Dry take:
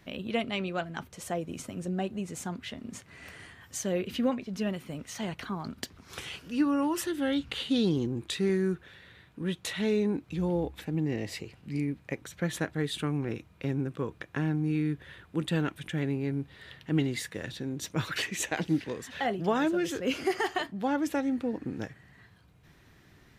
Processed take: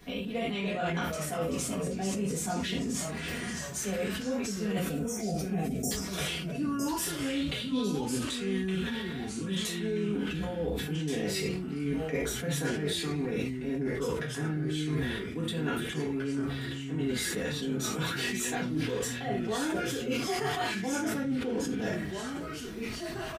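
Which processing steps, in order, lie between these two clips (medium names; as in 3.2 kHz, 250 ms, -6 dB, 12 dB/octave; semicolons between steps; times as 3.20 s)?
treble shelf 7.1 kHz +5 dB; comb 4.2 ms, depth 54%; gated-style reverb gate 130 ms falling, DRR -7.5 dB; spectral selection erased 4.85–5.91 s, 810–5300 Hz; reverse; compression 12:1, threshold -30 dBFS, peak gain reduction 21.5 dB; reverse; ever faster or slower copies 245 ms, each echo -2 st, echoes 2, each echo -6 dB; decay stretcher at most 32 dB/s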